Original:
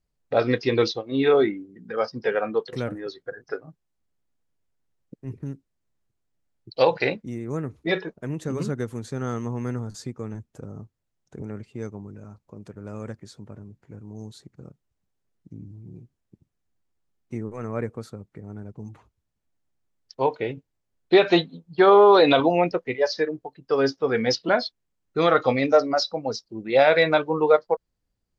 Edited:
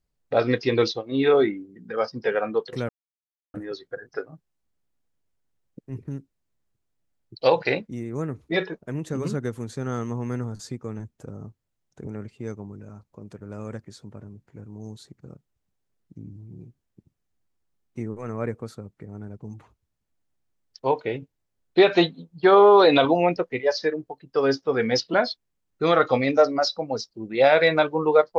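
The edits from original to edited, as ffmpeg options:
-filter_complex "[0:a]asplit=2[s0][s1];[s0]atrim=end=2.89,asetpts=PTS-STARTPTS,afade=t=out:st=2.886:d=0.004:c=hsin,apad=pad_dur=0.65[s2];[s1]atrim=start=2.89,asetpts=PTS-STARTPTS,afade=t=in:d=0.004:c=hsin[s3];[s2][s3]concat=n=2:v=0:a=1"

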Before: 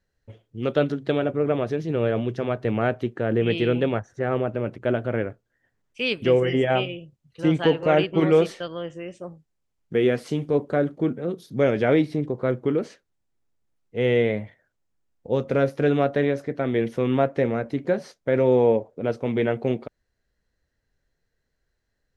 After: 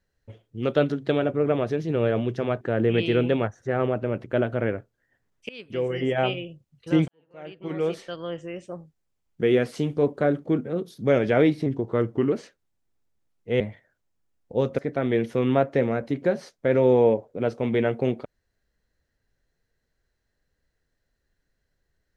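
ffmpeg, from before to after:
-filter_complex "[0:a]asplit=8[s0][s1][s2][s3][s4][s5][s6][s7];[s0]atrim=end=2.612[s8];[s1]atrim=start=3.128:end=6.01,asetpts=PTS-STARTPTS,afade=t=out:st=2.878:d=0.004:c=hsin:silence=0.0668344[s9];[s2]atrim=start=6.01:end=7.6,asetpts=PTS-STARTPTS,afade=t=in:d=0.92:silence=0.0668344,afade=t=out:st=1.586:d=0.004:c=hsin[s10];[s3]atrim=start=7.6:end=12.184,asetpts=PTS-STARTPTS,afade=t=in:d=1.23:c=qua[s11];[s4]atrim=start=12.18:end=12.79,asetpts=PTS-STARTPTS,asetrate=40572,aresample=44100,atrim=end_sample=29240,asetpts=PTS-STARTPTS[s12];[s5]atrim=start=12.786:end=14.072[s13];[s6]atrim=start=14.348:end=15.532[s14];[s7]atrim=start=16.408[s15];[s9][s10][s11]concat=n=3:v=0:a=1[s16];[s8][s16]acrossfade=d=0.004:c1=hsin:c2=hsin[s17];[s17][s12]acrossfade=d=0.004:c1=hsin:c2=hsin[s18];[s18][s13]acrossfade=d=0.004:c1=hsin:c2=hsin[s19];[s19][s14]acrossfade=d=0.004:c1=hsin:c2=hsin[s20];[s20][s15]acrossfade=d=0.004:c1=hsin:c2=hsin"

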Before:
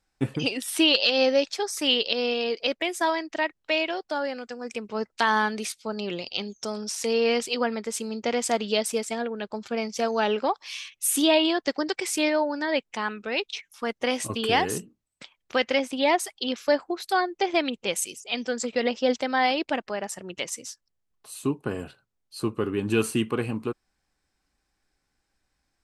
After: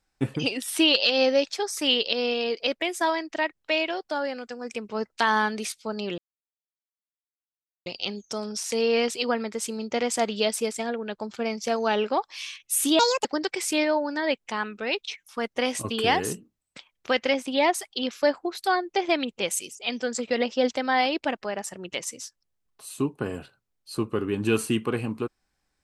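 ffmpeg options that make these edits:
-filter_complex "[0:a]asplit=4[s0][s1][s2][s3];[s0]atrim=end=6.18,asetpts=PTS-STARTPTS,afade=t=out:st=6.176:d=0.004:c=hsin,apad=pad_dur=1.68[s4];[s1]atrim=start=6.18:end=11.314,asetpts=PTS-STARTPTS,afade=t=in:d=0.004:c=hsin[s5];[s2]atrim=start=11.31:end=11.7,asetpts=PTS-STARTPTS,asetrate=66591,aresample=44100,atrim=end_sample=11390,asetpts=PTS-STARTPTS[s6];[s3]atrim=start=11.696[s7];[s4][s5]concat=n=2:v=0:a=1[s8];[s8][s6]acrossfade=d=0.004:c1=hsin:c2=hsin[s9];[s9][s7]acrossfade=d=0.004:c1=hsin:c2=hsin"

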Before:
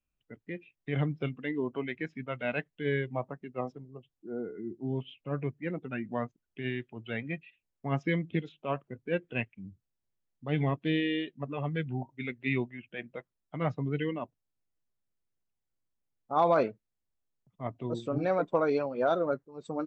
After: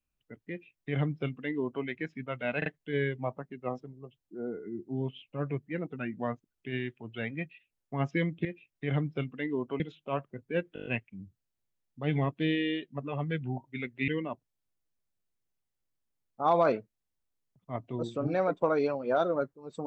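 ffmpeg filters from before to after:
-filter_complex "[0:a]asplit=12[s0][s1][s2][s3][s4][s5][s6][s7][s8][s9][s10][s11];[s0]atrim=end=2.622[s12];[s1]atrim=start=2.578:end=2.622[s13];[s2]atrim=start=2.578:end=8.372[s14];[s3]atrim=start=0.498:end=1.852[s15];[s4]atrim=start=8.368:end=9.332[s16];[s5]atrim=start=9.308:end=9.332[s17];[s6]atrim=start=9.308:end=9.332[s18];[s7]atrim=start=9.308:end=9.332[s19];[s8]atrim=start=9.308:end=9.332[s20];[s9]atrim=start=9.308:end=9.332[s21];[s10]atrim=start=9.308:end=12.532[s22];[s11]atrim=start=13.988[s23];[s12][s13]acrossfade=d=0.004:c1=hsin:c2=hsin[s24];[s24][s14]acrossfade=d=0.004:c1=hsin:c2=hsin[s25];[s25][s15]acrossfade=d=0.004:c1=hsin:c2=hsin[s26];[s26][s16]acrossfade=d=0.004:c1=hsin:c2=hsin[s27];[s27][s17]acrossfade=d=0.004:c1=hsin:c2=hsin[s28];[s28][s18]acrossfade=d=0.004:c1=hsin:c2=hsin[s29];[s29][s19]acrossfade=d=0.004:c1=hsin:c2=hsin[s30];[s30][s20]acrossfade=d=0.004:c1=hsin:c2=hsin[s31];[s31][s21]acrossfade=d=0.004:c1=hsin:c2=hsin[s32];[s32][s22]acrossfade=d=0.004:c1=hsin:c2=hsin[s33];[s33][s23]acrossfade=d=0.004:c1=hsin:c2=hsin"

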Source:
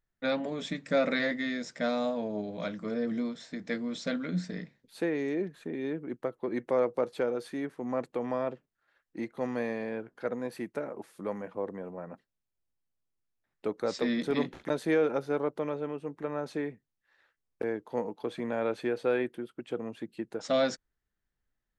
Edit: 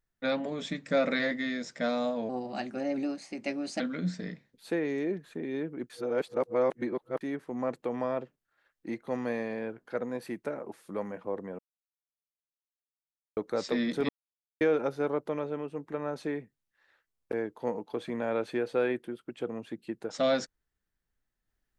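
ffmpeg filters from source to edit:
-filter_complex "[0:a]asplit=9[s0][s1][s2][s3][s4][s5][s6][s7][s8];[s0]atrim=end=2.294[s9];[s1]atrim=start=2.29:end=4.1,asetpts=PTS-STARTPTS,asetrate=52920,aresample=44100[s10];[s2]atrim=start=4.096:end=6.202[s11];[s3]atrim=start=6.198:end=7.512,asetpts=PTS-STARTPTS,areverse[s12];[s4]atrim=start=7.508:end=11.89,asetpts=PTS-STARTPTS,afade=t=out:st=4.378:d=0.004:c=hsin[s13];[s5]atrim=start=11.89:end=13.67,asetpts=PTS-STARTPTS,volume=0[s14];[s6]atrim=start=13.67:end=14.39,asetpts=PTS-STARTPTS,afade=t=in:d=0.004:c=hsin,afade=t=out:st=0.716:d=0.004:c=hsin[s15];[s7]atrim=start=14.39:end=14.91,asetpts=PTS-STARTPTS,volume=0[s16];[s8]atrim=start=14.91,asetpts=PTS-STARTPTS,afade=t=in:d=0.004:c=hsin[s17];[s9][s10]acrossfade=d=0.004:c1=hsin:c2=hsin[s18];[s18][s11]acrossfade=d=0.004:c1=hsin:c2=hsin[s19];[s19][s12]acrossfade=d=0.004:c1=hsin:c2=hsin[s20];[s13][s14][s15][s16][s17]concat=n=5:v=0:a=1[s21];[s20][s21]acrossfade=d=0.004:c1=hsin:c2=hsin"

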